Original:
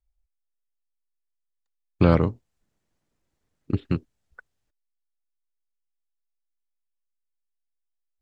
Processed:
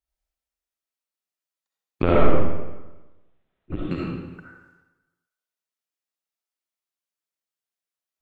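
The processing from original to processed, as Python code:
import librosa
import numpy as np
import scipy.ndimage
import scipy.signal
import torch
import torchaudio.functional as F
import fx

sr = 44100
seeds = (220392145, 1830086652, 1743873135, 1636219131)

y = fx.highpass(x, sr, hz=230.0, slope=6)
y = fx.lpc_vocoder(y, sr, seeds[0], excitation='pitch_kept', order=10, at=(2.02, 3.85))
y = fx.rev_freeverb(y, sr, rt60_s=1.1, hf_ratio=0.85, predelay_ms=25, drr_db=-5.0)
y = F.gain(torch.from_numpy(y), -1.0).numpy()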